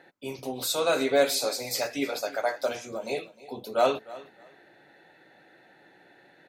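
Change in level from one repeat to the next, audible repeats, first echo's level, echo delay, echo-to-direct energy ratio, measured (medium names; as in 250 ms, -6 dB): -14.0 dB, 2, -19.0 dB, 307 ms, -19.0 dB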